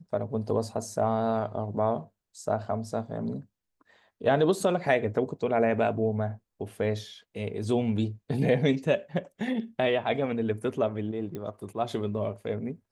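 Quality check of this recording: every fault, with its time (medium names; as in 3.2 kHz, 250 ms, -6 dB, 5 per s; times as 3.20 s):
11.35 s: pop -24 dBFS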